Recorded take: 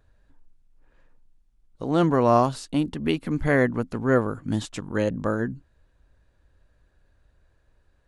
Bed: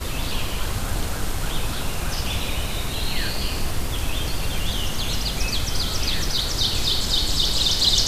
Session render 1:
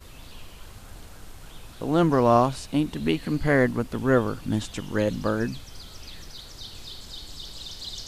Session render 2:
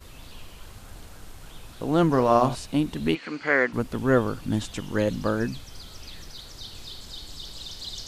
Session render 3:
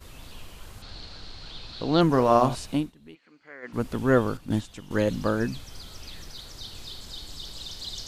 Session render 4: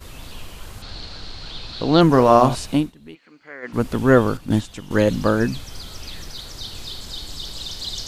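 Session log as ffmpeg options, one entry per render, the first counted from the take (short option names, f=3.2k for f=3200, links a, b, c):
-filter_complex "[1:a]volume=-18.5dB[a];[0:a][a]amix=inputs=2:normalize=0"
-filter_complex "[0:a]asettb=1/sr,asplit=3[a][b][c];[a]atrim=end=2.114[d];[b]atrim=start=2.11:end=2.55,asetpts=PTS-STARTPTS,afade=t=in:d=0.004:c=qsin,afade=t=out:st=0.436:d=0.004:c=qsin,bandreject=f=59.58:t=h:w=4,bandreject=f=119.16:t=h:w=4,bandreject=f=178.74:t=h:w=4,bandreject=f=238.32:t=h:w=4,bandreject=f=297.9:t=h:w=4,bandreject=f=357.48:t=h:w=4,bandreject=f=417.06:t=h:w=4,bandreject=f=476.64:t=h:w=4,bandreject=f=536.22:t=h:w=4,bandreject=f=595.8:t=h:w=4,bandreject=f=655.38:t=h:w=4,bandreject=f=714.96:t=h:w=4,bandreject=f=774.54:t=h:w=4,bandreject=f=834.12:t=h:w=4,bandreject=f=893.7:t=h:w=4,bandreject=f=953.28:t=h:w=4,bandreject=f=1.01286k:t=h:w=4,bandreject=f=1.07244k:t=h:w=4,bandreject=f=1.13202k:t=h:w=4,bandreject=f=1.1916k:t=h:w=4,bandreject=f=1.25118k:t=h:w=4,bandreject=f=1.31076k:t=h:w=4,bandreject=f=1.37034k:t=h:w=4,bandreject=f=1.42992k:t=h:w=4,bandreject=f=1.4895k:t=h:w=4,bandreject=f=1.54908k:t=h:w=4,bandreject=f=1.60866k:t=h:w=4,bandreject=f=1.66824k:t=h:w=4,bandreject=f=1.72782k:t=h:w=4,bandreject=f=1.7874k:t=h:w=4,bandreject=f=1.84698k:t=h:w=4,bandreject=f=1.90656k:t=h:w=4,bandreject=f=1.96614k:t=h:w=4,bandreject=f=2.02572k:t=h:w=4,bandreject=f=2.0853k:t=h:w=4,bandreject=f=2.14488k:t=h:w=4,bandreject=f=2.20446k:t=h:w=4,bandreject=f=2.26404k:t=h:w=4,bandreject=f=2.32362k:t=h:w=4,bandreject=f=2.3832k:t=h:w=4[e];[c]atrim=start=2.546[f];[d][e]acrossfade=d=0.004:c1=hsin:c2=qsin[g];[g][f]acrossfade=d=0.004:c1=qsin:c2=hsin,asplit=3[h][i][j];[h]afade=t=out:st=3.14:d=0.02[k];[i]highpass=410,equalizer=f=660:t=q:w=4:g=-4,equalizer=f=1.4k:t=q:w=4:g=7,equalizer=f=2.3k:t=q:w=4:g=8,equalizer=f=3.7k:t=q:w=4:g=-3,lowpass=f=6.6k:w=0.5412,lowpass=f=6.6k:w=1.3066,afade=t=in:st=3.14:d=0.02,afade=t=out:st=3.72:d=0.02[l];[j]afade=t=in:st=3.72:d=0.02[m];[k][l][m]amix=inputs=3:normalize=0"
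-filter_complex "[0:a]asettb=1/sr,asplit=3[a][b][c];[a]atrim=end=0.824[d];[b]atrim=start=0.82:end=2.01,asetpts=PTS-STARTPTS,afade=t=in:d=0.004:c=qsin,afade=t=out:st=1.186:d=0.004:c=qsin,lowpass=f=4.3k:t=q:w=6.6[e];[c]atrim=start=2.006[f];[d][e]acrossfade=d=0.004:c1=hsin:c2=qsin[g];[g][f]acrossfade=d=0.004:c1=qsin:c2=hsin,asettb=1/sr,asplit=3[h][i][j];[h]atrim=end=4.374[k];[i]atrim=start=4.37:end=4.91,asetpts=PTS-STARTPTS,afade=t=in:d=0.004:c=qsin,afade=t=out:st=0.536:d=0.004:c=qsin,agate=range=-9dB:threshold=-28dB:ratio=16:release=100:detection=peak[l];[j]atrim=start=4.906[m];[k][l]acrossfade=d=0.004:c1=hsin:c2=qsin[n];[n][m]acrossfade=d=0.004:c1=qsin:c2=hsin,asplit=3[o][p][q];[o]atrim=end=2.93,asetpts=PTS-STARTPTS,afade=t=out:st=2.73:d=0.2:silence=0.0668344[r];[p]atrim=start=2.93:end=3.62,asetpts=PTS-STARTPTS,volume=-23.5dB[s];[q]atrim=start=3.62,asetpts=PTS-STARTPTS,afade=t=in:d=0.2:silence=0.0668344[t];[r][s][t]concat=n=3:v=0:a=1"
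-af "volume=7dB,alimiter=limit=-1dB:level=0:latency=1"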